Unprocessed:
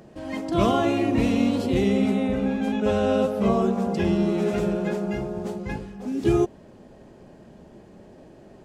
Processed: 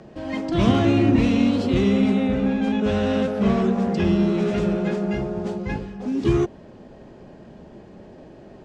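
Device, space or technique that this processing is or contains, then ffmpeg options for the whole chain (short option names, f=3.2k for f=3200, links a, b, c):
one-band saturation: -filter_complex "[0:a]lowpass=5.5k,acrossover=split=310|2200[a][b][c];[b]asoftclip=type=tanh:threshold=-29dB[d];[a][d][c]amix=inputs=3:normalize=0,asettb=1/sr,asplit=3[e][f][g];[e]atrim=end=0.674[h];[f]atrim=start=0.67:end=1.16,asetpts=PTS-STARTPTS,afade=t=in:d=0.004:c=qsin,afade=t=out:st=0.486:d=0.004:c=qsin,equalizer=f=120:w=0.59:g=8.5[i];[g]atrim=start=1.156[j];[h][i]acrossfade=d=0.004:c1=hsin:c2=qsin[k];[k][j]acrossfade=d=0.004:c1=qsin:c2=hsin,volume=4dB"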